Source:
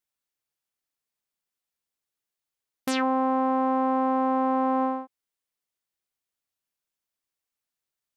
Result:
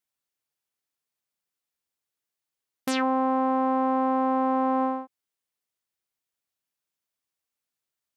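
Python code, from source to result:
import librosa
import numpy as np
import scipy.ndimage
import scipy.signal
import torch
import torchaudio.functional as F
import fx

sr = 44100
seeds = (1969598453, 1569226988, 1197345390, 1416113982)

y = scipy.signal.sosfilt(scipy.signal.butter(2, 46.0, 'highpass', fs=sr, output='sos'), x)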